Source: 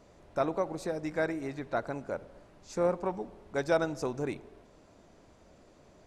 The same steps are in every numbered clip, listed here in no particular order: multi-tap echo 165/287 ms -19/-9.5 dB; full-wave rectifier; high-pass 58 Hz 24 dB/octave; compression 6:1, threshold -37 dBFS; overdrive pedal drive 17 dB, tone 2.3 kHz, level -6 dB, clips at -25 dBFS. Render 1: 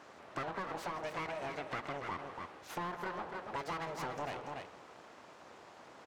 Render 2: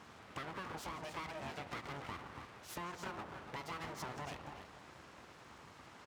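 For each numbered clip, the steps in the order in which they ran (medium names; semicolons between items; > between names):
full-wave rectifier > high-pass > overdrive pedal > multi-tap echo > compression; overdrive pedal > compression > multi-tap echo > full-wave rectifier > high-pass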